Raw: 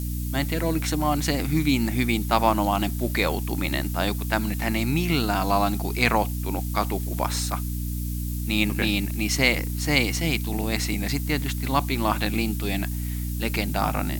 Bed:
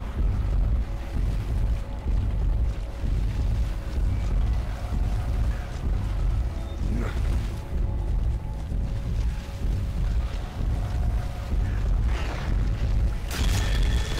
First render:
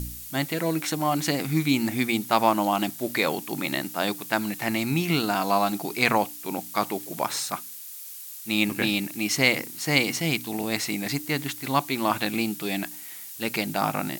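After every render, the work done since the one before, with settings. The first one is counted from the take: de-hum 60 Hz, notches 5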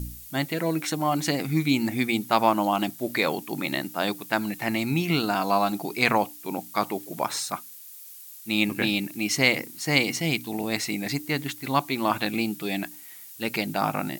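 denoiser 6 dB, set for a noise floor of -40 dBFS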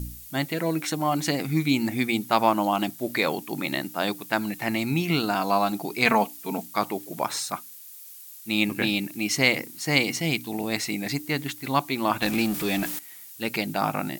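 6.05–6.66 comb 4.5 ms, depth 68%; 12.22–12.99 zero-crossing step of -28 dBFS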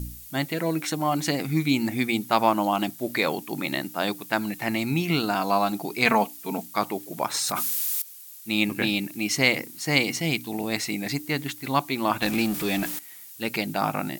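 7.34–8.02 fast leveller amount 100%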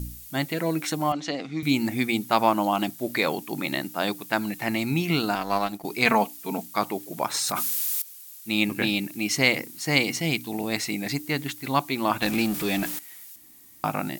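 1.12–1.63 speaker cabinet 280–5500 Hz, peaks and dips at 370 Hz -7 dB, 910 Hz -6 dB, 1600 Hz -6 dB, 2300 Hz -6 dB, 4700 Hz -6 dB; 5.35–5.85 power-law curve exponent 1.4; 13.36–13.84 room tone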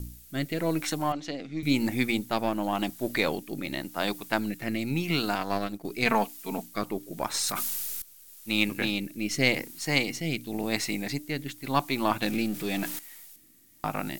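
half-wave gain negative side -3 dB; rotary speaker horn 0.9 Hz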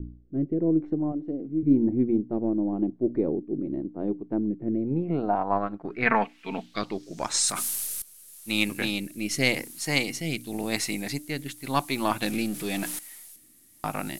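low-pass sweep 360 Hz -> 11000 Hz, 4.67–7.69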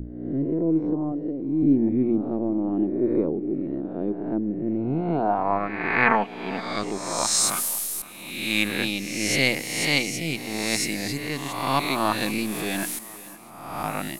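spectral swells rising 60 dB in 1.08 s; tape echo 0.519 s, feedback 53%, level -18 dB, low-pass 3700 Hz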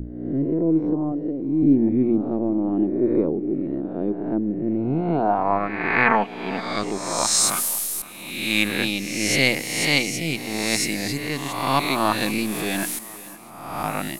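gain +2.5 dB; limiter -3 dBFS, peak gain reduction 2 dB

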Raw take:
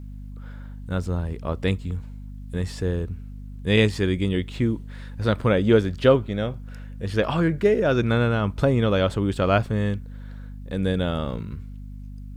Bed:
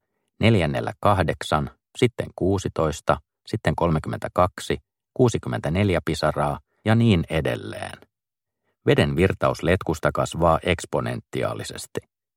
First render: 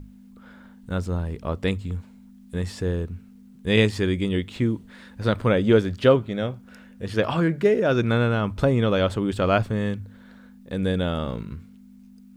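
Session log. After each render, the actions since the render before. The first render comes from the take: notches 50/100/150 Hz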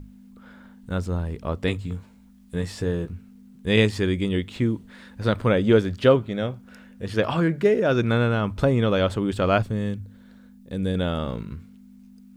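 1.66–3.13 doubler 18 ms -6.5 dB; 9.62–10.95 bell 1300 Hz -7 dB 2.8 oct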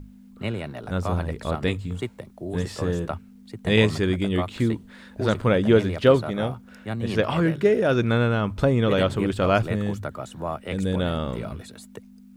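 add bed -11.5 dB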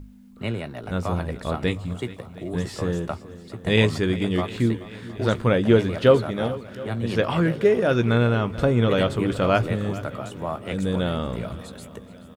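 doubler 17 ms -12.5 dB; swung echo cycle 0.713 s, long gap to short 1.5:1, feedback 46%, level -17.5 dB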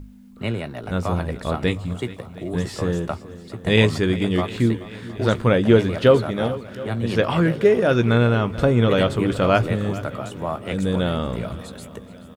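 gain +2.5 dB; limiter -3 dBFS, peak gain reduction 1.5 dB

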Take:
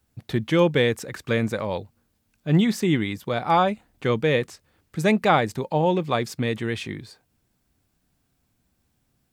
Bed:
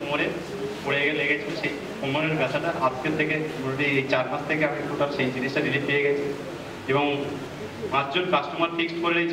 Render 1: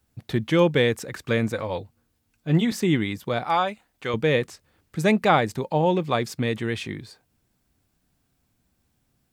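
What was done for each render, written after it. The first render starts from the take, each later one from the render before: 1.52–2.72 notch comb 200 Hz; 3.44–4.14 low shelf 490 Hz -11.5 dB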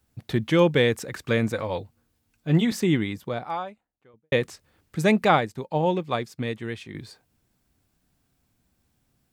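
2.7–4.32 studio fade out; 5.28–6.95 upward expander, over -41 dBFS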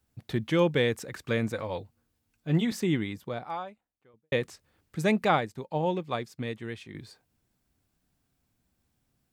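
gain -5 dB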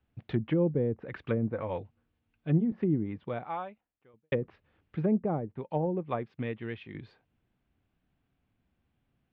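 Chebyshev low-pass 3000 Hz, order 3; treble ducked by the level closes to 430 Hz, closed at -23.5 dBFS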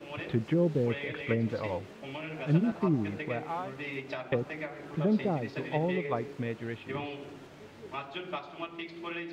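add bed -15 dB

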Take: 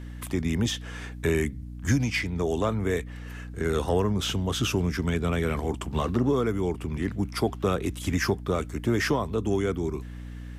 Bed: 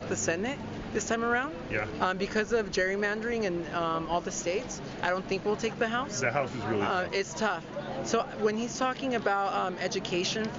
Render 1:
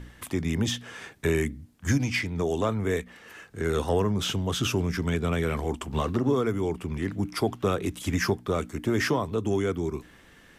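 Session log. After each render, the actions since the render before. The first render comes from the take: de-hum 60 Hz, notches 5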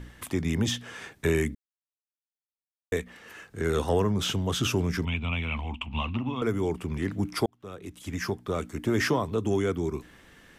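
1.55–2.92 mute; 5.05–6.42 EQ curve 110 Hz 0 dB, 150 Hz -10 dB, 230 Hz -1 dB, 400 Hz -19 dB, 940 Hz 0 dB, 1700 Hz -13 dB, 2600 Hz +13 dB, 4900 Hz -16 dB, 10000 Hz -24 dB; 7.46–8.95 fade in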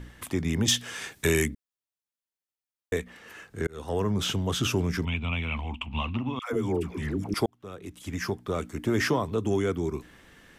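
0.68–1.46 high shelf 2700 Hz +11.5 dB; 3.67–4.14 fade in; 6.39–7.34 dispersion lows, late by 0.14 s, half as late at 610 Hz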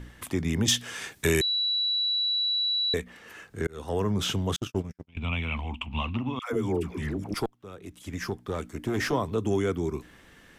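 1.41–2.94 bleep 3930 Hz -23.5 dBFS; 4.56–5.17 gate -25 dBFS, range -59 dB; 7.13–9.13 tube stage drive 20 dB, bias 0.5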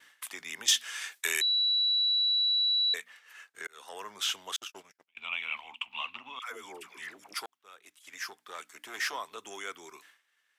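expander -42 dBFS; HPF 1300 Hz 12 dB/oct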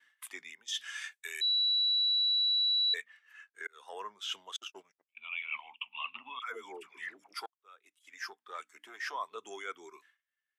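reverse; compressor 10:1, threshold -36 dBFS, peak gain reduction 16.5 dB; reverse; spectral expander 1.5:1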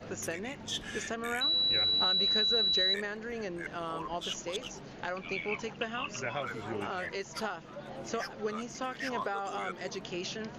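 add bed -8 dB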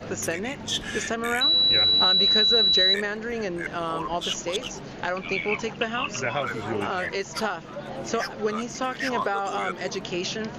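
gain +8.5 dB

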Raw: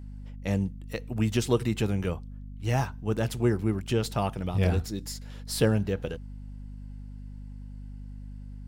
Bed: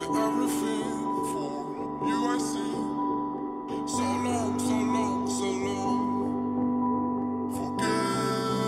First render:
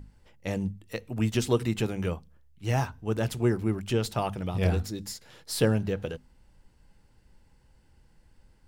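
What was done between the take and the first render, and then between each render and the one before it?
notches 50/100/150/200/250 Hz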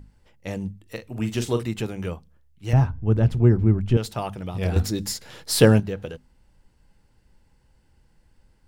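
0.82–1.62 doubler 42 ms -9 dB; 2.73–3.97 RIAA curve playback; 4.76–5.8 gain +9 dB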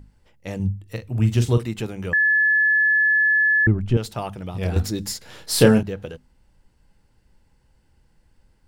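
0.59–1.58 bell 100 Hz +12.5 dB 1.3 oct; 2.13–3.67 bleep 1720 Hz -14.5 dBFS; 5.24–5.83 doubler 32 ms -5.5 dB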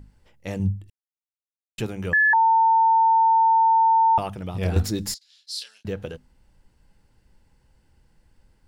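0.9–1.78 mute; 2.33–4.18 bleep 900 Hz -14 dBFS; 5.14–5.85 ladder band-pass 4900 Hz, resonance 50%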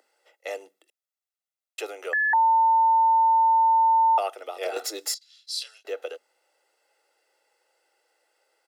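steep high-pass 330 Hz 72 dB/oct; comb 1.5 ms, depth 60%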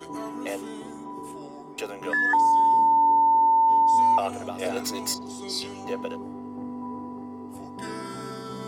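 add bed -8.5 dB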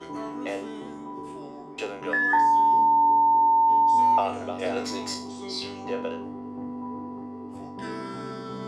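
spectral trails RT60 0.39 s; air absorption 99 m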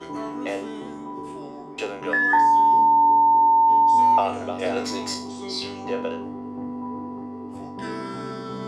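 gain +3 dB

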